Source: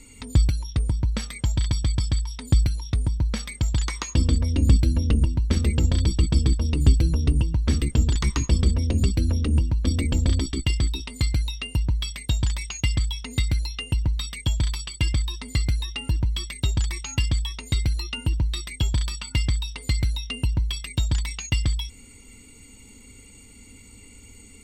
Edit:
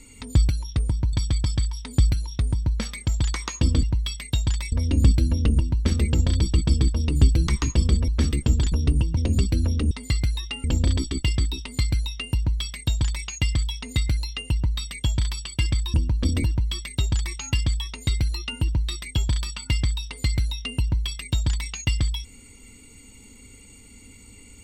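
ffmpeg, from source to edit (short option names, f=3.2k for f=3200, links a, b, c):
-filter_complex "[0:a]asplit=12[a][b][c][d][e][f][g][h][i][j][k][l];[a]atrim=end=1.132[m];[b]atrim=start=1.668:end=4.372[n];[c]atrim=start=11.788:end=12.682[o];[d]atrim=start=4.368:end=7.122[p];[e]atrim=start=8.208:end=8.822[q];[f]atrim=start=7.568:end=8.212[r];[g]atrim=start=7.118:end=7.572[s];[h]atrim=start=8.818:end=9.562[t];[i]atrim=start=15.358:end=16.092[u];[j]atrim=start=10.058:end=15.362[v];[k]atrim=start=9.558:end=10.062[w];[l]atrim=start=16.088[x];[m][n]acrossfade=d=0.004:c1=hsin:c2=hsin[y];[y][o]acrossfade=d=0.004:c1=hsin:c2=hsin[z];[z][p]acrossfade=d=0.004:c1=hsin:c2=hsin[aa];[aa][q]acrossfade=d=0.004:c1=hsin:c2=hsin[ab];[ab][r]acrossfade=d=0.004:c1=hsin:c2=hsin[ac];[ac][s]acrossfade=d=0.004:c1=hsin:c2=hsin[ad];[ad][t]acrossfade=d=0.004:c1=hsin:c2=hsin[ae];[ae][u]acrossfade=d=0.004:c1=hsin:c2=hsin[af];[af][v]acrossfade=d=0.004:c1=hsin:c2=hsin[ag];[ag][w]acrossfade=d=0.004:c1=hsin:c2=hsin[ah];[ah][x]acrossfade=d=0.004:c1=hsin:c2=hsin"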